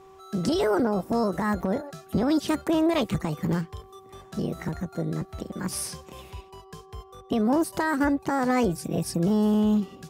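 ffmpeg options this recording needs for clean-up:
ffmpeg -i in.wav -af "bandreject=frequency=383.3:width_type=h:width=4,bandreject=frequency=766.6:width_type=h:width=4,bandreject=frequency=1149.9:width_type=h:width=4" out.wav

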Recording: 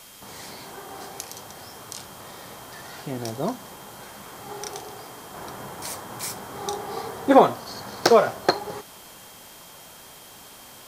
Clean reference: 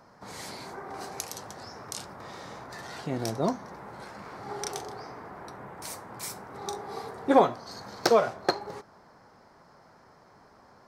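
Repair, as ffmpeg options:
ffmpeg -i in.wav -af "adeclick=threshold=4,bandreject=frequency=3200:width=30,afwtdn=0.005,asetnsamples=nb_out_samples=441:pad=0,asendcmd='5.34 volume volume -5.5dB',volume=0dB" out.wav

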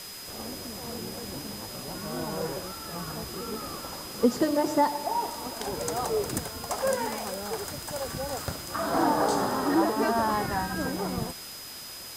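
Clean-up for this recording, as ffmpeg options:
ffmpeg -i in.wav -af "bandreject=frequency=5000:width=30,afwtdn=0.0079" out.wav

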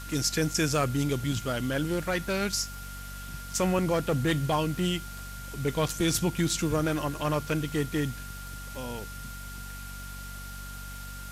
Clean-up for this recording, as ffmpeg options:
ffmpeg -i in.wav -af "adeclick=threshold=4,bandreject=frequency=47.8:width_type=h:width=4,bandreject=frequency=95.6:width_type=h:width=4,bandreject=frequency=143.4:width_type=h:width=4,bandreject=frequency=191.2:width_type=h:width=4,bandreject=frequency=239:width_type=h:width=4,bandreject=frequency=1400:width=30,afwtdn=0.005" out.wav

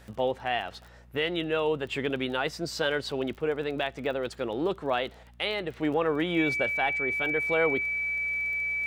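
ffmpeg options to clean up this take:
ffmpeg -i in.wav -af "adeclick=threshold=4,bandreject=frequency=59.9:width_type=h:width=4,bandreject=frequency=119.8:width_type=h:width=4,bandreject=frequency=179.7:width_type=h:width=4,bandreject=frequency=239.6:width_type=h:width=4,bandreject=frequency=2300:width=30" out.wav

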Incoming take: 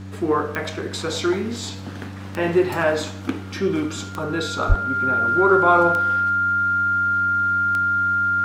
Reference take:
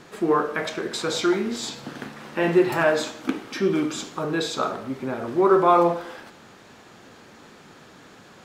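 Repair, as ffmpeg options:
ffmpeg -i in.wav -filter_complex "[0:a]adeclick=threshold=4,bandreject=frequency=96.3:width_type=h:width=4,bandreject=frequency=192.6:width_type=h:width=4,bandreject=frequency=288.9:width_type=h:width=4,bandreject=frequency=1400:width=30,asplit=3[link_01][link_02][link_03];[link_01]afade=type=out:start_time=4.68:duration=0.02[link_04];[link_02]highpass=frequency=140:width=0.5412,highpass=frequency=140:width=1.3066,afade=type=in:start_time=4.68:duration=0.02,afade=type=out:start_time=4.8:duration=0.02[link_05];[link_03]afade=type=in:start_time=4.8:duration=0.02[link_06];[link_04][link_05][link_06]amix=inputs=3:normalize=0" out.wav

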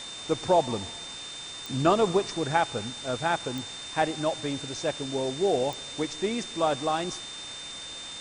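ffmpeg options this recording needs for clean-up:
ffmpeg -i in.wav -af "adeclick=threshold=4,bandreject=frequency=3600:width=30,afwtdn=0.01" out.wav

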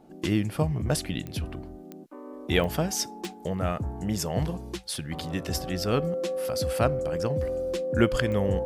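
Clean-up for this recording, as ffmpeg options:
ffmpeg -i in.wav -af "adeclick=threshold=4,bandreject=frequency=520:width=30" out.wav

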